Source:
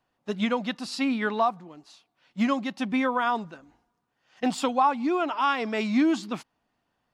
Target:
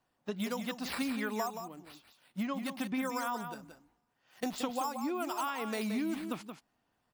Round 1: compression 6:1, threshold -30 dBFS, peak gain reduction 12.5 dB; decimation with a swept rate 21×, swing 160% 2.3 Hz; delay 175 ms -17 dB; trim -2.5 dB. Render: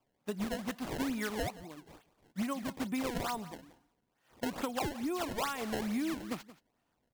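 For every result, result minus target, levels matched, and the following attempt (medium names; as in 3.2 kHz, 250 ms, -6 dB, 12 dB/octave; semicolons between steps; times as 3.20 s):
decimation with a swept rate: distortion +11 dB; echo-to-direct -9 dB
compression 6:1, threshold -30 dBFS, peak gain reduction 12.5 dB; decimation with a swept rate 4×, swing 160% 2.3 Hz; delay 175 ms -17 dB; trim -2.5 dB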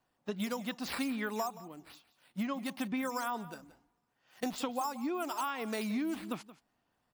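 echo-to-direct -9 dB
compression 6:1, threshold -30 dBFS, peak gain reduction 12.5 dB; decimation with a swept rate 4×, swing 160% 2.3 Hz; delay 175 ms -8 dB; trim -2.5 dB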